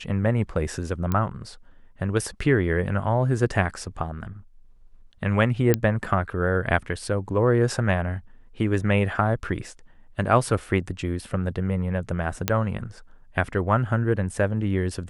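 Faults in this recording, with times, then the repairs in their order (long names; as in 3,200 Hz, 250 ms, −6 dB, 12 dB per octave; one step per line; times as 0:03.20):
0:01.12: click −12 dBFS
0:05.74: click −6 dBFS
0:12.48: click −5 dBFS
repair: click removal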